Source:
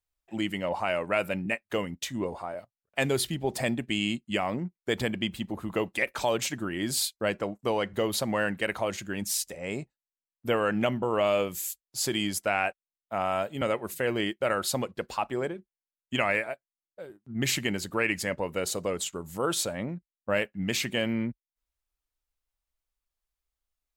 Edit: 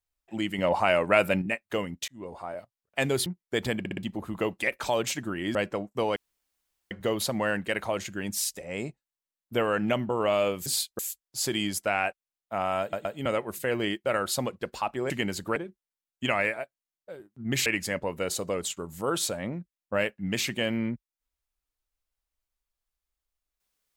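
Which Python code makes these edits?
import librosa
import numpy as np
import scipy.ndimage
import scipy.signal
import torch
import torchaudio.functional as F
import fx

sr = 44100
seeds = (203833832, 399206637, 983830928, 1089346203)

y = fx.edit(x, sr, fx.clip_gain(start_s=0.58, length_s=0.84, db=5.5),
    fx.fade_in_span(start_s=2.08, length_s=0.43),
    fx.cut(start_s=3.26, length_s=1.35),
    fx.stutter_over(start_s=5.14, slice_s=0.06, count=4),
    fx.move(start_s=6.9, length_s=0.33, to_s=11.59),
    fx.insert_room_tone(at_s=7.84, length_s=0.75),
    fx.stutter(start_s=13.41, slice_s=0.12, count=3),
    fx.move(start_s=17.56, length_s=0.46, to_s=15.46), tone=tone)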